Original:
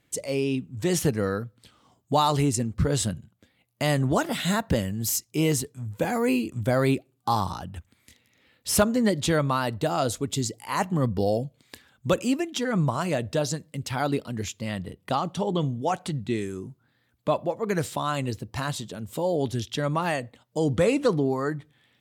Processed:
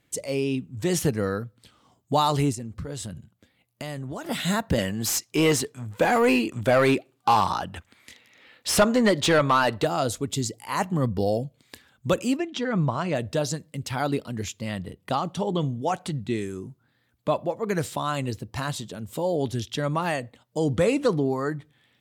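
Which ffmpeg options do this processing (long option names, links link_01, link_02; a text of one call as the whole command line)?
ffmpeg -i in.wav -filter_complex "[0:a]asettb=1/sr,asplit=3[link_01][link_02][link_03];[link_01]atrim=end=2.524[link_04];[link_02]atrim=start=2.52:end=4.26,asetpts=PTS-STARTPTS,afade=type=in:duration=0.004:curve=qsin,afade=type=out:start_time=1.736:duration=0.004:curve=qsin,acompressor=threshold=-31dB:ratio=6:attack=3.2:release=140:knee=1:detection=peak[link_05];[link_03]atrim=start=4.256[link_06];[link_04][link_05]acrossfade=duration=0.004:curve1=hsin:curve2=qsin[link_07];[link_07][link_06]acrossfade=duration=0.004:curve1=qsin:curve2=hsin,asettb=1/sr,asplit=3[link_08][link_09][link_10];[link_08]atrim=end=4.784[link_11];[link_09]atrim=start=4.78:end=9.85,asetpts=PTS-STARTPTS,afade=type=in:duration=0.004:curve=qsin,afade=type=out:start_time=5.066:duration=0.004:curve=qsin,asplit=2[link_12][link_13];[link_13]highpass=frequency=720:poles=1,volume=17dB,asoftclip=type=tanh:threshold=-9dB[link_14];[link_12][link_14]amix=inputs=2:normalize=0,lowpass=frequency=3200:poles=1,volume=-6dB[link_15];[link_10]atrim=start=9.846[link_16];[link_11][link_15]acrossfade=duration=0.004:curve1=hsin:curve2=qsin[link_17];[link_17][link_16]acrossfade=duration=0.004:curve1=qsin:curve2=hsin,asplit=3[link_18][link_19][link_20];[link_18]afade=type=out:start_time=12.36:duration=0.02[link_21];[link_19]lowpass=4400,afade=type=in:start_time=12.36:duration=0.02,afade=type=out:start_time=13.14:duration=0.02[link_22];[link_20]afade=type=in:start_time=13.14:duration=0.02[link_23];[link_21][link_22][link_23]amix=inputs=3:normalize=0" out.wav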